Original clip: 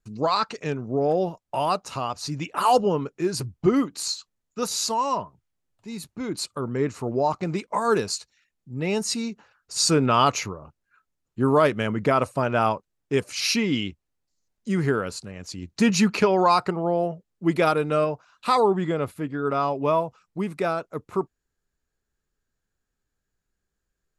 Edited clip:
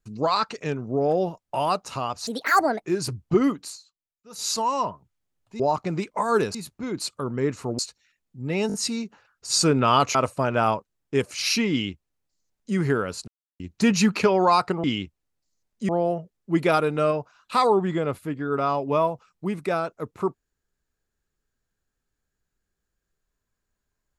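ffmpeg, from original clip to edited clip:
-filter_complex "[0:a]asplit=16[a][b][c][d][e][f][g][h][i][j][k][l][m][n][o][p];[a]atrim=end=2.274[q];[b]atrim=start=2.27:end=3.17,asetpts=PTS-STARTPTS,asetrate=68796,aresample=44100,atrim=end_sample=25442,asetpts=PTS-STARTPTS[r];[c]atrim=start=3.166:end=4.1,asetpts=PTS-STARTPTS,afade=t=out:st=0.754:d=0.18:silence=0.0944061[s];[d]atrim=start=4.1:end=4.63,asetpts=PTS-STARTPTS,volume=-20.5dB[t];[e]atrim=start=4.63:end=5.922,asetpts=PTS-STARTPTS,afade=t=in:d=0.18:silence=0.0944061[u];[f]atrim=start=7.158:end=8.112[v];[g]atrim=start=5.918:end=7.162[w];[h]atrim=start=8.108:end=9.022[x];[i]atrim=start=8.998:end=9.022[y];[j]atrim=start=8.998:end=9.022[z];[k]atrim=start=8.998:end=10.412[aa];[l]atrim=start=12.128:end=15.26,asetpts=PTS-STARTPTS,afade=t=out:st=3.128:d=0.004:c=hsin[ab];[m]atrim=start=15.26:end=15.58,asetpts=PTS-STARTPTS,volume=0[ac];[n]atrim=start=15.58:end=16.822,asetpts=PTS-STARTPTS,afade=t=in:d=0.004:c=hsin[ad];[o]atrim=start=13.688:end=14.742[ae];[p]atrim=start=16.818[af];[q][r]acrossfade=d=0.004:c1=hsin:c2=hsin[ag];[s][t][u]concat=n=3:v=0:a=1[ah];[ag][ah]acrossfade=d=0.004:c1=hsin:c2=hsin[ai];[ai][v]acrossfade=d=0.004:c1=hsin:c2=hsin[aj];[aj][w]acrossfade=d=0.004:c1=hsin:c2=hsin[ak];[ak][x]acrossfade=d=0.004:c1=hsin:c2=hsin[al];[al][y]acrossfade=d=0.004:c1=hsin:c2=hsin[am];[am][z]acrossfade=d=0.004:c1=hsin:c2=hsin[an];[an][aa]acrossfade=d=0.004:c1=hsin:c2=hsin[ao];[ab][ac][ad]concat=n=3:v=0:a=1[ap];[ao][ap]acrossfade=d=0.004:c1=hsin:c2=hsin[aq];[aq][ae]acrossfade=d=0.004:c1=hsin:c2=hsin[ar];[ar][af]acrossfade=d=0.004:c1=hsin:c2=hsin"

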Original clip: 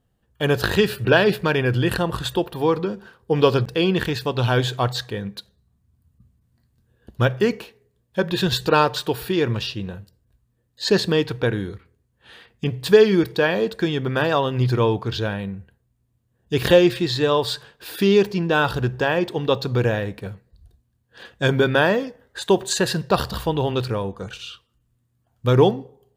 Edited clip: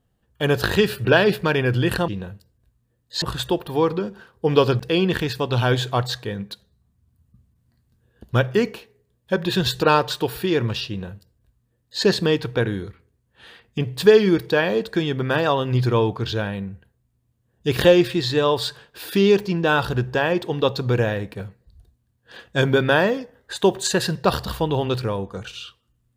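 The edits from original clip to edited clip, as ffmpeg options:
-filter_complex "[0:a]asplit=3[a][b][c];[a]atrim=end=2.082[d];[b]atrim=start=9.748:end=10.892[e];[c]atrim=start=2.078[f];[d][e]acrossfade=d=0.004:c1=hsin:c2=hsin[g];[g][f]acrossfade=d=0.004:c1=hsin:c2=hsin"

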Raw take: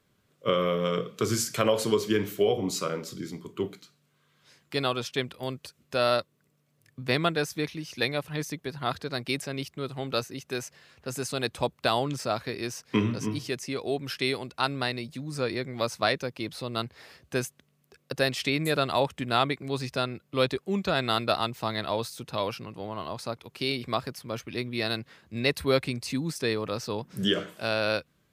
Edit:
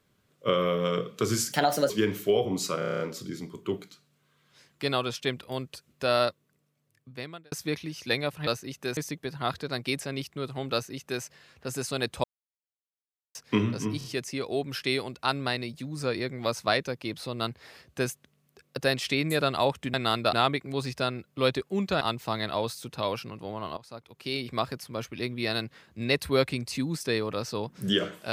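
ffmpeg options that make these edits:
-filter_complex "[0:a]asplit=21[a][b][c][d][e][f][g][h][i][j][k][l][m][n][o][p][q][r][s][t][u];[a]atrim=end=1.524[v];[b]atrim=start=1.52:end=2.02,asetpts=PTS-STARTPTS,asetrate=58212,aresample=44100[w];[c]atrim=start=2.016:end=2.942[x];[d]atrim=start=2.908:end=2.942[y];[e]atrim=start=2.908:end=2.942[z];[f]atrim=start=2.908:end=2.942[aa];[g]atrim=start=2.908:end=2.942[ab];[h]atrim=start=2.908:end=2.942[ac];[i]atrim=start=2.908:end=2.942[ad];[j]atrim=start=2.908:end=7.43,asetpts=PTS-STARTPTS,afade=t=out:st=3.232:d=1.29[ae];[k]atrim=start=7.43:end=8.382,asetpts=PTS-STARTPTS,afade=t=in:d=0.004:c=hsin[af];[l]atrim=start=10.138:end=10.642[ag];[m]atrim=start=8.378:end=11.65,asetpts=PTS-STARTPTS,afade=t=out:st=3.268:d=0.004:c=hsin[ah];[n]atrim=start=11.65:end=12.76,asetpts=PTS-STARTPTS,volume=0[ai];[o]atrim=start=12.76:end=13.422,asetpts=PTS-STARTPTS,afade=t=in:d=0.004:c=hsin[aj];[p]atrim=start=13.388:end=13.422[ak];[q]atrim=start=13.388:end=19.292[al];[r]atrim=start=20.968:end=21.362[am];[s]atrim=start=19.288:end=20.972[an];[t]atrim=start=21.358:end=23.12,asetpts=PTS-STARTPTS,afade=t=out:st=1.758:d=0.004:c=hsin:silence=0.158489[ao];[u]atrim=start=23.12,asetpts=PTS-STARTPTS,afade=t=in:d=0.83:silence=0.158489[ap];[v][w]acrossfade=d=0.004:c1=hsin:c2=hsin[aq];[aq][x]acrossfade=d=0.004:c1=hsin:c2=hsin[ar];[ar][y]acrossfade=d=0.004:c1=hsin:c2=hsin[as];[as][z]acrossfade=d=0.004:c1=hsin:c2=hsin[at];[at][aa]acrossfade=d=0.004:c1=hsin:c2=hsin[au];[au][ab]acrossfade=d=0.004:c1=hsin:c2=hsin[av];[av][ac]acrossfade=d=0.004:c1=hsin:c2=hsin[aw];[aw][ad]acrossfade=d=0.004:c1=hsin:c2=hsin[ax];[ae][af]concat=n=2:v=0:a=1[ay];[ax][ay]acrossfade=d=0.004:c1=hsin:c2=hsin[az];[az][ag]acrossfade=d=0.004:c1=hsin:c2=hsin[ba];[ah][ai][aj]concat=n=3:v=0:a=1[bb];[ba][bb]acrossfade=d=0.004:c1=hsin:c2=hsin[bc];[bc][ak]acrossfade=d=0.004:c1=hsin:c2=hsin[bd];[bd][al]acrossfade=d=0.004:c1=hsin:c2=hsin[be];[be][am]acrossfade=d=0.004:c1=hsin:c2=hsin[bf];[bf][an]acrossfade=d=0.004:c1=hsin:c2=hsin[bg];[ao][ap]concat=n=2:v=0:a=1[bh];[bg][bh]acrossfade=d=0.004:c1=hsin:c2=hsin"

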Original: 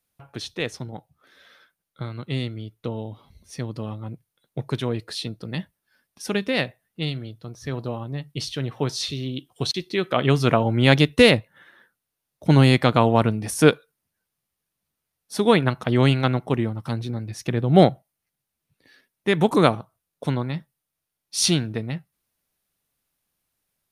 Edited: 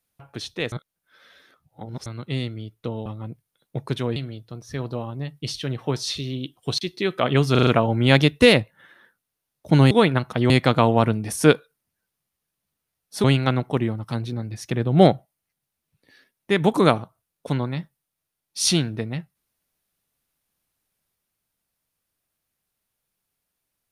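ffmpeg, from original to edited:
-filter_complex "[0:a]asplit=12[a][b][c][d][e][f][g][h][i][j][k][l];[a]atrim=end=0.722[m];[b]atrim=start=0.718:end=2.062,asetpts=PTS-STARTPTS,areverse[n];[c]atrim=start=2.058:end=3.062[o];[d]atrim=start=3.878:end=4.982[p];[e]atrim=start=7.088:end=10.482[q];[f]atrim=start=10.438:end=10.482[r];[g]atrim=start=10.438:end=10.482[s];[h]atrim=start=10.438:end=10.482[t];[i]atrim=start=10.438:end=12.682[u];[j]atrim=start=15.418:end=16.012[v];[k]atrim=start=12.678:end=15.422[w];[l]atrim=start=16.008[x];[m][n]acrossfade=d=0.004:c1=hsin:c2=hsin[y];[y][o]acrossfade=d=0.004:c1=hsin:c2=hsin[z];[z][p]acrossfade=d=0.004:c1=hsin:c2=hsin[aa];[aa][q]acrossfade=d=0.004:c1=hsin:c2=hsin[ab];[ab][r]acrossfade=d=0.004:c1=hsin:c2=hsin[ac];[ac][s]acrossfade=d=0.004:c1=hsin:c2=hsin[ad];[ad][t]acrossfade=d=0.004:c1=hsin:c2=hsin[ae];[ae][u]acrossfade=d=0.004:c1=hsin:c2=hsin[af];[af][v]acrossfade=d=0.004:c1=hsin:c2=hsin[ag];[ag][w]acrossfade=d=0.004:c1=hsin:c2=hsin[ah];[ah][x]acrossfade=d=0.004:c1=hsin:c2=hsin"

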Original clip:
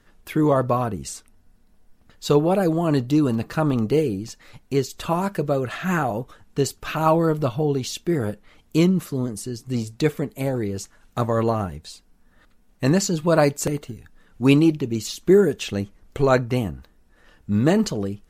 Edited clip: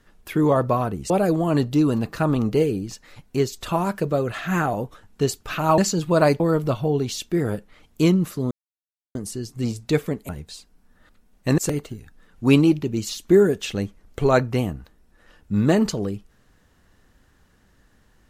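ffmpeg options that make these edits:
-filter_complex "[0:a]asplit=7[a][b][c][d][e][f][g];[a]atrim=end=1.102[h];[b]atrim=start=2.468:end=7.152[i];[c]atrim=start=12.938:end=13.562[j];[d]atrim=start=7.148:end=9.26,asetpts=PTS-STARTPTS,afade=t=out:st=2.108:d=0.004:c=hsin,apad=pad_dur=0.64[k];[e]atrim=start=9.26:end=10.402,asetpts=PTS-STARTPTS,afade=t=in:d=0.004:c=hsin[l];[f]atrim=start=11.648:end=12.942[m];[g]atrim=start=13.558[n];[h][i]acrossfade=d=0.004:c1=hsin:c2=hsin[o];[o][j]acrossfade=d=0.004:c1=hsin:c2=hsin[p];[k][l]concat=n=2:v=0:a=1[q];[p][q]acrossfade=d=0.004:c1=hsin:c2=hsin[r];[r][m]acrossfade=d=0.004:c1=hsin:c2=hsin[s];[s][n]acrossfade=d=0.004:c1=hsin:c2=hsin"

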